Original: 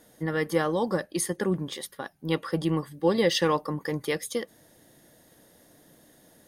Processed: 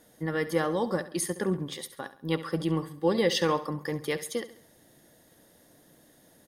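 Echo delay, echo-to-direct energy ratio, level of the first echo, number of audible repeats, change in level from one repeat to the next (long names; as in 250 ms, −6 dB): 68 ms, −13.5 dB, −14.5 dB, 3, −7.0 dB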